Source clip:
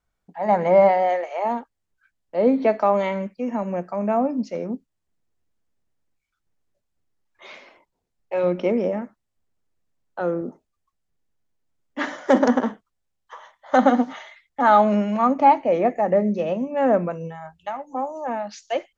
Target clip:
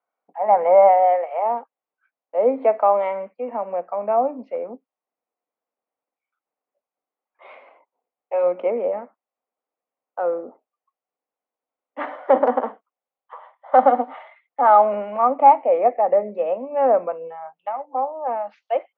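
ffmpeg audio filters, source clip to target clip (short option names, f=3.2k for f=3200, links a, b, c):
-af "highpass=f=310:w=0.5412,highpass=f=310:w=1.3066,equalizer=f=360:t=q:w=4:g=-8,equalizer=f=510:t=q:w=4:g=5,equalizer=f=750:t=q:w=4:g=7,equalizer=f=1.1k:t=q:w=4:g=4,equalizer=f=1.7k:t=q:w=4:g=-7,lowpass=f=2.4k:w=0.5412,lowpass=f=2.4k:w=1.3066,volume=-1.5dB"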